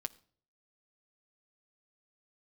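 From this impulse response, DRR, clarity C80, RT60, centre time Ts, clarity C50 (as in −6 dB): 7.5 dB, 24.5 dB, non-exponential decay, 2 ms, 21.5 dB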